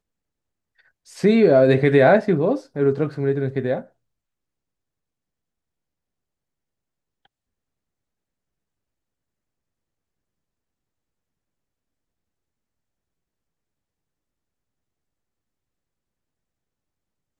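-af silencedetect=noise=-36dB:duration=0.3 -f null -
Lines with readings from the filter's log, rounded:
silence_start: 0.00
silence_end: 1.10 | silence_duration: 1.10
silence_start: 3.82
silence_end: 17.39 | silence_duration: 13.58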